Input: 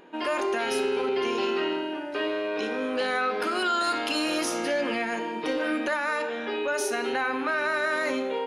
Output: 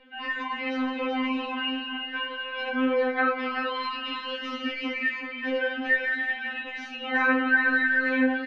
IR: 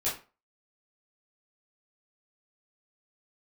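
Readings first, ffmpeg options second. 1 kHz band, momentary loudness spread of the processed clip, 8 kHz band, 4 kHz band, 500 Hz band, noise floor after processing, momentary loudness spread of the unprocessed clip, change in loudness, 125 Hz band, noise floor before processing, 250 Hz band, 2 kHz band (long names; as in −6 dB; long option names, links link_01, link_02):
−2.0 dB, 10 LU, below −20 dB, 0.0 dB, −4.5 dB, −38 dBFS, 4 LU, +0.5 dB, can't be measured, −33 dBFS, +2.0 dB, +5.0 dB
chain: -filter_complex "[0:a]lowshelf=frequency=370:gain=5.5,flanger=delay=5.9:depth=2.6:regen=43:speed=1:shape=sinusoidal,acrossover=split=330|1300|3200[link_01][link_02][link_03][link_04];[link_02]alimiter=level_in=7dB:limit=-24dB:level=0:latency=1,volume=-7dB[link_05];[link_01][link_05][link_03][link_04]amix=inputs=4:normalize=0,lowpass=frequency=4400:width=0.5412,lowpass=frequency=4400:width=1.3066,acrossover=split=3200[link_06][link_07];[link_07]acompressor=threshold=-52dB:ratio=4:attack=1:release=60[link_08];[link_06][link_08]amix=inputs=2:normalize=0,equalizer=frequency=1900:width=1.6:gain=8.5,flanger=delay=17.5:depth=2.9:speed=2.7,aecho=1:1:378:0.422,afftfilt=real='re*3.46*eq(mod(b,12),0)':imag='im*3.46*eq(mod(b,12),0)':win_size=2048:overlap=0.75,volume=5dB"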